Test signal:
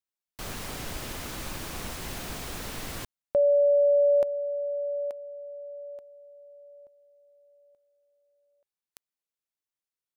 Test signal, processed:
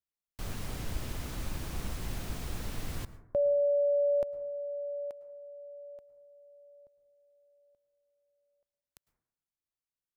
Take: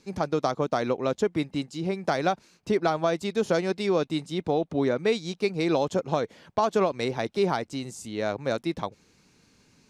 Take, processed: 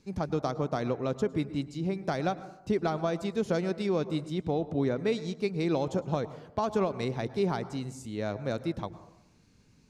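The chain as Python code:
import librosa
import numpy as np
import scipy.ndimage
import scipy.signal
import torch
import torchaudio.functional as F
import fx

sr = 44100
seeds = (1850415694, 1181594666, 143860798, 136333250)

y = fx.low_shelf(x, sr, hz=200.0, db=12.0)
y = fx.rev_plate(y, sr, seeds[0], rt60_s=0.8, hf_ratio=0.25, predelay_ms=95, drr_db=14.5)
y = F.gain(torch.from_numpy(y), -7.0).numpy()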